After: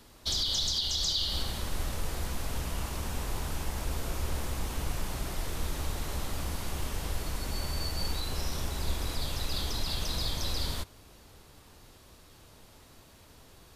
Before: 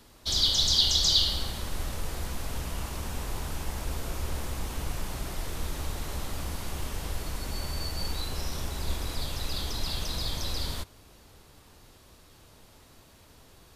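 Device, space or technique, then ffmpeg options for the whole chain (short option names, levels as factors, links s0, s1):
stacked limiters: -af "alimiter=limit=0.168:level=0:latency=1:release=263,alimiter=limit=0.1:level=0:latency=1:release=90"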